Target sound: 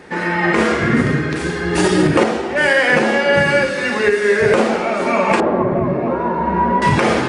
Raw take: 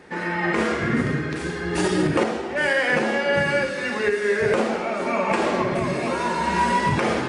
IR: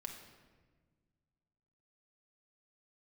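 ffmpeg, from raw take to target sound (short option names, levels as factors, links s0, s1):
-filter_complex "[0:a]asettb=1/sr,asplit=3[s0][s1][s2];[s0]atrim=end=5.404[s3];[s1]atrim=start=5.4:end=6.82,asetpts=PTS-STARTPTS,afade=t=in:d=0.004:c=qsin,afade=t=out:st=1.416:d=0.004:c=qsin,lowpass=1000[s4];[s2]atrim=start=6.816[s5];[s3][s4]acrossfade=d=0.004:c1=hsin:c2=qsin[s6];[s6][s5]acrossfade=d=0.004:c1=qsin:c2=hsin,volume=2.24"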